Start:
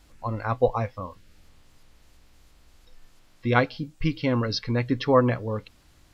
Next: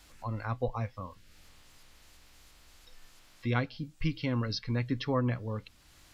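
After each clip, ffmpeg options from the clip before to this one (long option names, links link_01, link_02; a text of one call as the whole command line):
ffmpeg -i in.wav -filter_complex "[0:a]tiltshelf=frequency=790:gain=-4.5,acrossover=split=260[link_01][link_02];[link_02]acompressor=threshold=-54dB:ratio=1.5[link_03];[link_01][link_03]amix=inputs=2:normalize=0" out.wav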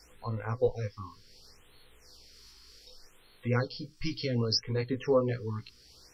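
ffmpeg -i in.wav -af "superequalizer=7b=3.16:13b=1.41:14b=3.98,flanger=delay=16:depth=3.4:speed=0.49,afftfilt=real='re*(1-between(b*sr/1024,560*pow(6300/560,0.5+0.5*sin(2*PI*0.66*pts/sr))/1.41,560*pow(6300/560,0.5+0.5*sin(2*PI*0.66*pts/sr))*1.41))':imag='im*(1-between(b*sr/1024,560*pow(6300/560,0.5+0.5*sin(2*PI*0.66*pts/sr))/1.41,560*pow(6300/560,0.5+0.5*sin(2*PI*0.66*pts/sr))*1.41))':win_size=1024:overlap=0.75,volume=1.5dB" out.wav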